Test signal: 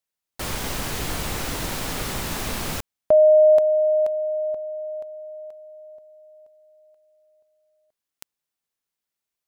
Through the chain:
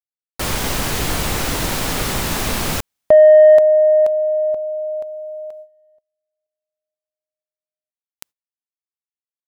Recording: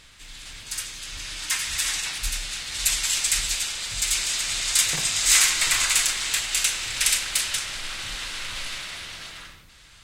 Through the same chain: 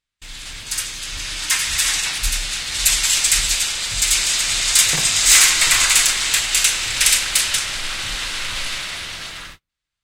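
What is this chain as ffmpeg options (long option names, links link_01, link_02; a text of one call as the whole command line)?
ffmpeg -i in.wav -af "acontrast=59,agate=range=-40dB:threshold=-34dB:ratio=16:release=345:detection=rms,volume=1dB" out.wav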